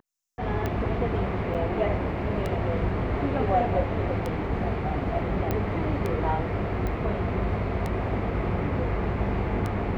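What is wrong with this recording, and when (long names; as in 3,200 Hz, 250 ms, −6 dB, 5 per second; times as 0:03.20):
scratch tick 33 1/3 rpm −16 dBFS
0:01.54–0:01.55: drop-out 7.3 ms
0:05.51: click −14 dBFS
0:06.87: click −19 dBFS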